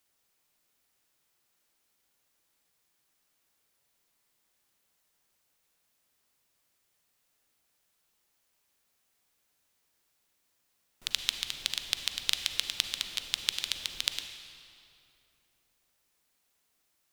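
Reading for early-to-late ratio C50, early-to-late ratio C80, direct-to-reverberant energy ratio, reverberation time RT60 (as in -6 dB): 7.5 dB, 8.0 dB, 7.0 dB, 2.9 s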